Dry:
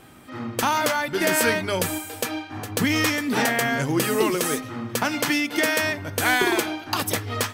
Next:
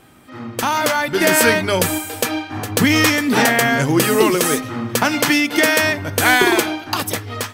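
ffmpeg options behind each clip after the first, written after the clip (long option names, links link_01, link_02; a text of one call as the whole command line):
ffmpeg -i in.wav -af "dynaudnorm=framelen=180:gausssize=9:maxgain=11.5dB" out.wav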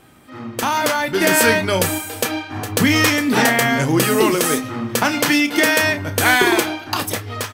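ffmpeg -i in.wav -filter_complex "[0:a]asplit=2[link_01][link_02];[link_02]adelay=31,volume=-11dB[link_03];[link_01][link_03]amix=inputs=2:normalize=0,volume=-1dB" out.wav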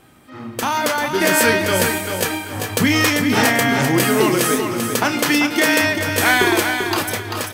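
ffmpeg -i in.wav -af "aecho=1:1:391|782|1173|1564:0.473|0.166|0.058|0.0203,volume=-1dB" out.wav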